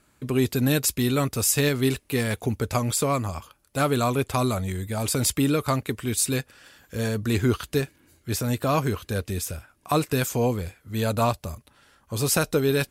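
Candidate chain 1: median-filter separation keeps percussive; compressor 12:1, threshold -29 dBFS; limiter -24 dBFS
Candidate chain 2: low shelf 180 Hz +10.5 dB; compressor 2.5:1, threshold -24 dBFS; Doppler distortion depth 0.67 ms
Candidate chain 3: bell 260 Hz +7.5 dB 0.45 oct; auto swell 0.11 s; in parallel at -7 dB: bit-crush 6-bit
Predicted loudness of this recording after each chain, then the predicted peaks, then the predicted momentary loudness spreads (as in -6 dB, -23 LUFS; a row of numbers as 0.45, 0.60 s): -37.0, -27.5, -21.0 LUFS; -24.0, -11.5, -4.0 dBFS; 8, 6, 13 LU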